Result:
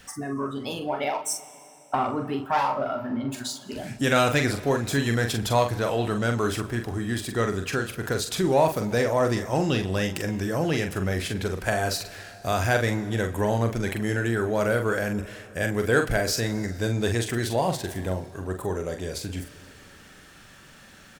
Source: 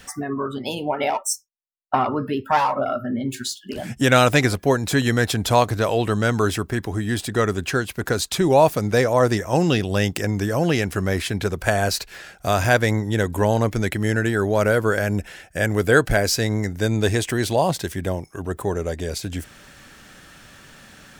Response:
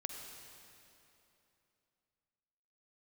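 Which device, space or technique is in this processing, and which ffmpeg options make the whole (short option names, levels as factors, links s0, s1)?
saturated reverb return: -filter_complex "[0:a]asplit=2[s0][s1];[s1]adelay=43,volume=0.473[s2];[s0][s2]amix=inputs=2:normalize=0,asplit=2[s3][s4];[1:a]atrim=start_sample=2205[s5];[s4][s5]afir=irnorm=-1:irlink=0,asoftclip=type=tanh:threshold=0.126,volume=0.473[s6];[s3][s6]amix=inputs=2:normalize=0,volume=0.422"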